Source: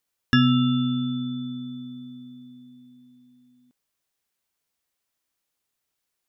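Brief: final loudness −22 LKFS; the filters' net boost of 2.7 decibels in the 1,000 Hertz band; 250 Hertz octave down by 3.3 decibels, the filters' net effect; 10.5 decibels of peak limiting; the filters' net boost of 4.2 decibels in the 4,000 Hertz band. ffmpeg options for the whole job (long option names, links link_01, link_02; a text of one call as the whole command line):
ffmpeg -i in.wav -af "equalizer=frequency=250:width_type=o:gain=-3.5,equalizer=frequency=1000:width_type=o:gain=4,equalizer=frequency=4000:width_type=o:gain=5,volume=7dB,alimiter=limit=-10dB:level=0:latency=1" out.wav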